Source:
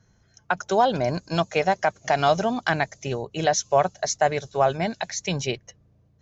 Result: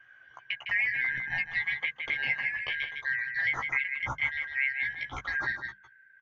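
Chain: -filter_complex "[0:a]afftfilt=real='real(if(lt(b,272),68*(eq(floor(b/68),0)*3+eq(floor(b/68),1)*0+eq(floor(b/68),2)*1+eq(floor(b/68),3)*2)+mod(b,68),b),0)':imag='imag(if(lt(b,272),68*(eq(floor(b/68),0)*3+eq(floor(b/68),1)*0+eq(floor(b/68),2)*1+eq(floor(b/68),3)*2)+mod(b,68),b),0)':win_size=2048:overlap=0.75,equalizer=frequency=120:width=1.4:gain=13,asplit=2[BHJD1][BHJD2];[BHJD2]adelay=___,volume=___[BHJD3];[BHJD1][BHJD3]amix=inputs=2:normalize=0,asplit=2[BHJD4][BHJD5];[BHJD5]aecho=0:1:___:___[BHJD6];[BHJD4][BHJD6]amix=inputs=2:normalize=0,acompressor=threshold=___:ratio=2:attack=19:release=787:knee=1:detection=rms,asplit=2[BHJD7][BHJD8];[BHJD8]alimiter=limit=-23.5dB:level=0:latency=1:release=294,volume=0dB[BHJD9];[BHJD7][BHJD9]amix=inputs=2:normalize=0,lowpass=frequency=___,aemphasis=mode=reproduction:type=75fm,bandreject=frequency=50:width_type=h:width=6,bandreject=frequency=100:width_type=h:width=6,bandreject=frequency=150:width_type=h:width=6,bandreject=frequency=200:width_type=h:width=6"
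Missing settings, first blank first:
15, -4.5dB, 156, 0.398, -33dB, 2400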